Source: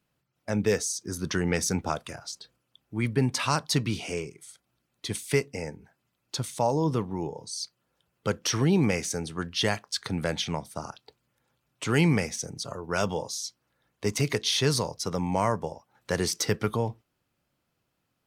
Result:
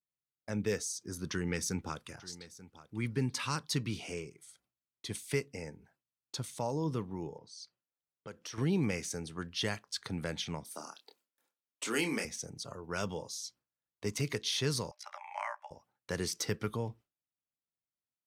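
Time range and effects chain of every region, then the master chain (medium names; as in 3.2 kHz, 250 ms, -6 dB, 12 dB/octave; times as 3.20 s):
1.30–3.80 s: peaking EQ 650 Hz -9.5 dB 0.31 oct + delay 887 ms -18 dB
7.38–8.58 s: level-controlled noise filter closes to 2.1 kHz, open at -26.5 dBFS + bass shelf 140 Hz -7 dB + compression 2:1, threshold -41 dBFS
10.64–12.25 s: high-pass 240 Hz 24 dB/octave + treble shelf 5.5 kHz +10 dB + doubling 27 ms -6 dB
14.91–15.71 s: AM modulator 60 Hz, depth 80% + rippled Chebyshev high-pass 580 Hz, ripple 9 dB + peaking EQ 1.5 kHz +12.5 dB 2.1 oct
whole clip: gate with hold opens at -50 dBFS; dynamic bell 730 Hz, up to -5 dB, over -41 dBFS, Q 1.7; trim -7.5 dB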